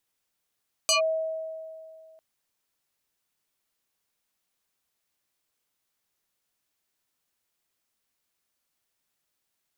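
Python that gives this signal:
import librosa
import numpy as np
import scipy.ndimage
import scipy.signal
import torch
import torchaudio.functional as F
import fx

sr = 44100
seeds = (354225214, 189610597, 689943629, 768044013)

y = fx.fm2(sr, length_s=1.3, level_db=-18.0, carrier_hz=641.0, ratio=2.8, index=4.8, index_s=0.12, decay_s=2.32, shape='linear')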